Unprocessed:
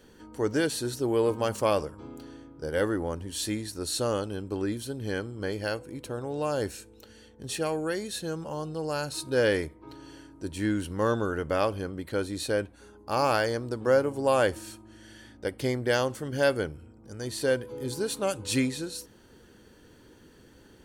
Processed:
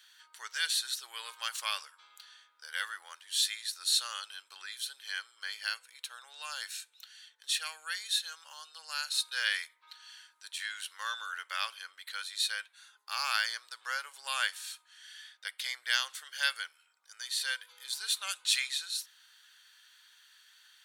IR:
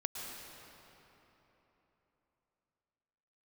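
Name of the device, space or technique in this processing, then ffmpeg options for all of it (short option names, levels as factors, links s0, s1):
headphones lying on a table: -af "highpass=f=1400:w=0.5412,highpass=f=1400:w=1.3066,equalizer=f=3700:t=o:w=0.41:g=9,volume=1.12"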